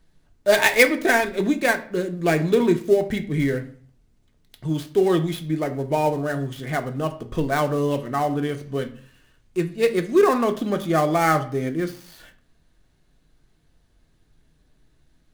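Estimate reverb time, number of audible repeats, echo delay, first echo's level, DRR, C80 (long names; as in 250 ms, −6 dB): 0.45 s, no echo audible, no echo audible, no echo audible, 6.0 dB, 18.5 dB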